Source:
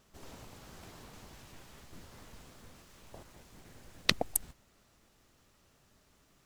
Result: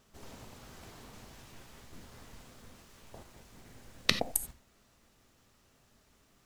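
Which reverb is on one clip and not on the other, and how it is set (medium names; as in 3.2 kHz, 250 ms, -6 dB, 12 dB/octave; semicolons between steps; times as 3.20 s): gated-style reverb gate 110 ms flat, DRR 9 dB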